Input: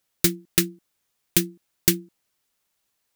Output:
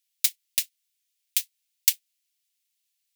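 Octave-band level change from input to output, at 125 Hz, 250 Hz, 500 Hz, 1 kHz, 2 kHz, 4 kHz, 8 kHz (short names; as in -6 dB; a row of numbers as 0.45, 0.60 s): under -40 dB, under -40 dB, under -40 dB, under -20 dB, -6.5 dB, -2.0 dB, -1.5 dB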